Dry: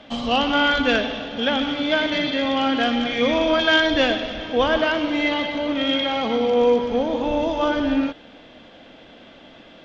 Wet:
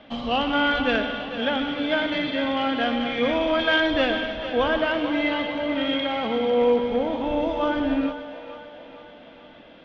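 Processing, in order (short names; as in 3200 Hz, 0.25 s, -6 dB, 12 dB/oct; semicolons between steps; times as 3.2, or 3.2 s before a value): LPF 3500 Hz 12 dB/oct; split-band echo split 410 Hz, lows 94 ms, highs 0.448 s, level -11 dB; gain -3 dB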